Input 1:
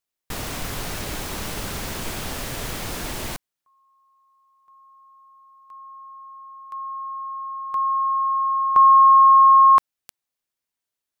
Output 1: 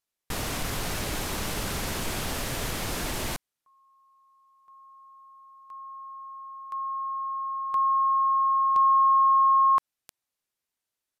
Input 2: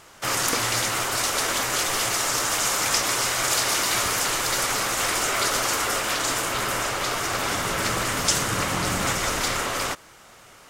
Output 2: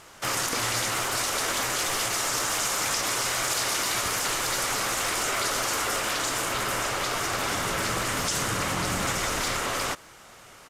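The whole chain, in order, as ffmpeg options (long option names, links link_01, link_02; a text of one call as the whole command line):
ffmpeg -i in.wav -af "acompressor=threshold=-18dB:ratio=6:attack=0.11:release=103:knee=6:detection=rms,aresample=32000,aresample=44100" out.wav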